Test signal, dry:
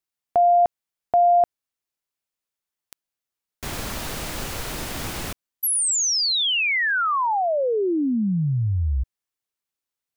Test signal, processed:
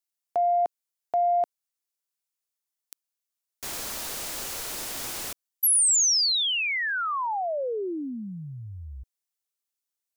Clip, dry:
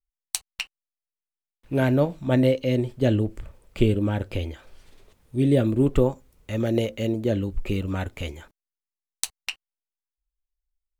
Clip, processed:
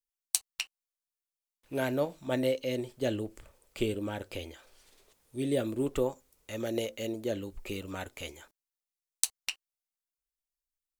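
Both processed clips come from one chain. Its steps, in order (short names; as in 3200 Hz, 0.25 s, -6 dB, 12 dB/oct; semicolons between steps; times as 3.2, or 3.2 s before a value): tone controls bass -11 dB, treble +8 dB; in parallel at -10.5 dB: soft clip -8.5 dBFS; on the sum: gain -8.5 dB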